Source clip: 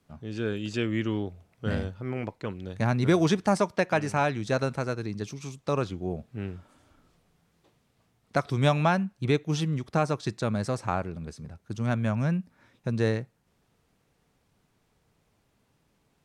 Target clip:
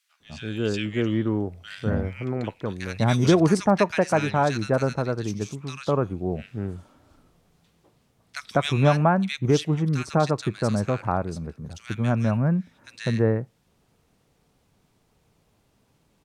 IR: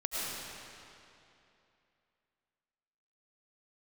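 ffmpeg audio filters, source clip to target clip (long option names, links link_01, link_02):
-filter_complex "[0:a]acrossover=split=1700[link_01][link_02];[link_01]adelay=200[link_03];[link_03][link_02]amix=inputs=2:normalize=0,volume=4.5dB"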